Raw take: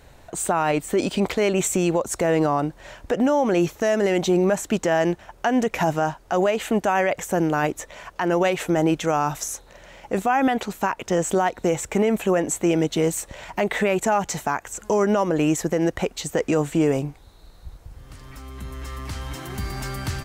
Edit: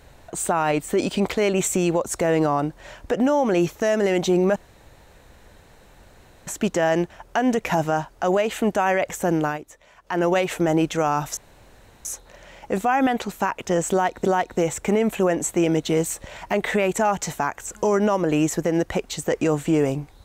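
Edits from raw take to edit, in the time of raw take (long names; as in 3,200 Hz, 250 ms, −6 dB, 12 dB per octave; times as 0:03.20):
0:04.56: splice in room tone 1.91 s
0:07.54–0:08.25: duck −12.5 dB, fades 0.13 s
0:09.46: splice in room tone 0.68 s
0:11.32–0:11.66: repeat, 2 plays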